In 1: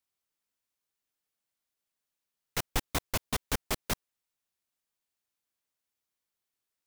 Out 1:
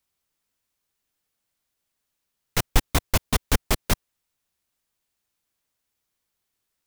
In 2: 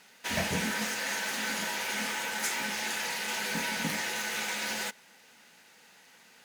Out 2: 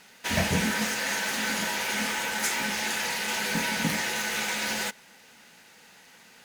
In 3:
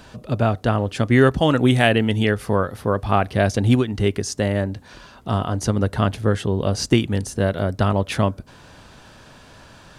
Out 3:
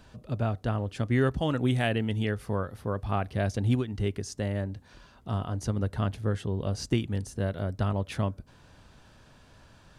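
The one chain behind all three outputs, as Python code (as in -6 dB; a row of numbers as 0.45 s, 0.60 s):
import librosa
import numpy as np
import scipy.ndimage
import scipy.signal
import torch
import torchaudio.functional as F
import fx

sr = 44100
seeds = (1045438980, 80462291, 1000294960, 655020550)

y = fx.low_shelf(x, sr, hz=140.0, db=7.5)
y = y * 10.0 ** (-30 / 20.0) / np.sqrt(np.mean(np.square(y)))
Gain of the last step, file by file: +7.0 dB, +4.0 dB, -12.0 dB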